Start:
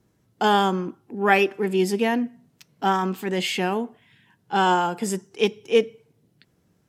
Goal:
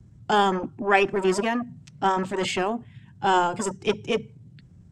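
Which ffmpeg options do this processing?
ffmpeg -i in.wav -filter_complex "[0:a]lowpass=frequency=8000:width_type=q:width=2.7,bandreject=frequency=460:width=12,atempo=1.4,acrossover=split=160|630|3300[link_01][link_02][link_03][link_04];[link_01]aeval=exprs='0.0299*sin(PI/2*7.08*val(0)/0.0299)':channel_layout=same[link_05];[link_05][link_02][link_03][link_04]amix=inputs=4:normalize=0,highshelf=frequency=5300:gain=-9.5" out.wav

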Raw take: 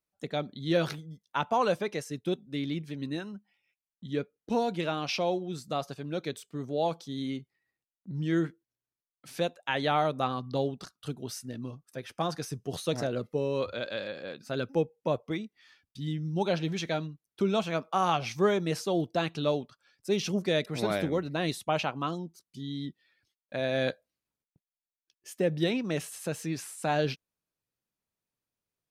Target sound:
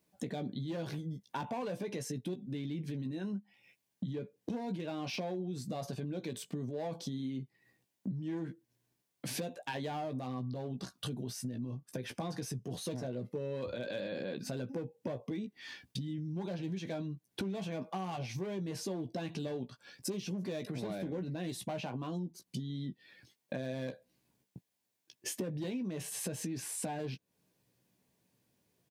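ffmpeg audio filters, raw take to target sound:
ffmpeg -i in.wav -filter_complex "[0:a]asoftclip=type=hard:threshold=-24.5dB,alimiter=level_in=12dB:limit=-24dB:level=0:latency=1:release=32,volume=-12dB,lowshelf=frequency=390:gain=11.5,bandreject=frequency=1300:width=5.6,asplit=2[link_01][link_02];[link_02]adelay=16,volume=-7dB[link_03];[link_01][link_03]amix=inputs=2:normalize=0,acompressor=threshold=-47dB:ratio=6,highpass=130,volume=11dB" out.wav

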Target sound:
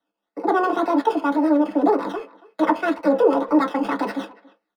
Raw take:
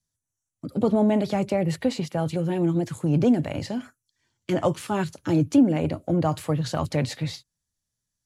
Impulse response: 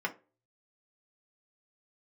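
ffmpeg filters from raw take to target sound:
-filter_complex "[0:a]acrossover=split=370|1100[link_01][link_02][link_03];[link_03]acrusher=samples=31:mix=1:aa=0.000001:lfo=1:lforange=18.6:lforate=1.1[link_04];[link_01][link_02][link_04]amix=inputs=3:normalize=0[link_05];[1:a]atrim=start_sample=2205[link_06];[link_05][link_06]afir=irnorm=-1:irlink=0,asetrate=76440,aresample=44100,asplit=2[link_07][link_08];[link_08]adelay=280,highpass=300,lowpass=3400,asoftclip=type=hard:threshold=-15dB,volume=-20dB[link_09];[link_07][link_09]amix=inputs=2:normalize=0"

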